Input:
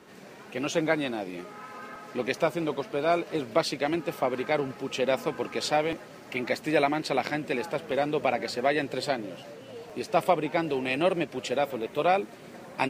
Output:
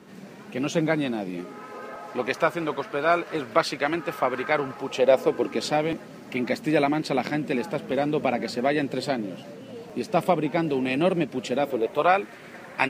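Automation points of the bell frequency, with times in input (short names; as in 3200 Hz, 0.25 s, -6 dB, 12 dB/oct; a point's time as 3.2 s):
bell +9.5 dB 1.2 oct
1.3 s 190 Hz
2.43 s 1400 Hz
4.56 s 1400 Hz
5.72 s 210 Hz
11.58 s 210 Hz
12.2 s 1800 Hz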